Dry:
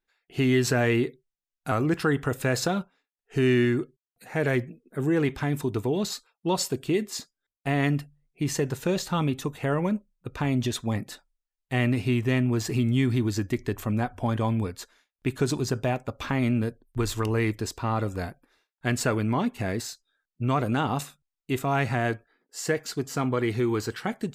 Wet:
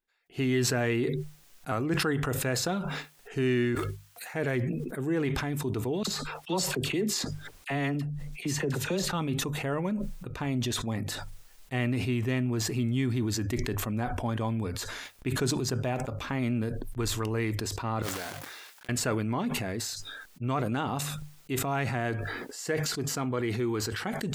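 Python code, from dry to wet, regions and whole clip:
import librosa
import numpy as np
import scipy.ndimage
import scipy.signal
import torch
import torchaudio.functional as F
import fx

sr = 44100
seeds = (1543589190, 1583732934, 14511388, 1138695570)

y = fx.chain(x, sr, fx.highpass(hz=940.0, slope=12),
    fx.quant_float(bits=2), at=(3.75, 4.34))
y = fx.chain(y, sr, fx.high_shelf(hz=12000.0, db=-5.5),
    fx.dispersion(late='lows', ms=46.0, hz=1100.0),
    fx.band_squash(depth_pct=40), at=(6.03, 9.13))
y = fx.chain(y, sr, fx.block_float(bits=3),
    fx.highpass(hz=860.0, slope=6),
    fx.over_compress(threshold_db=-40.0, ratio=-0.5), at=(18.02, 18.89))
y = fx.hum_notches(y, sr, base_hz=50, count=3)
y = fx.sustainer(y, sr, db_per_s=26.0)
y = y * 10.0 ** (-5.0 / 20.0)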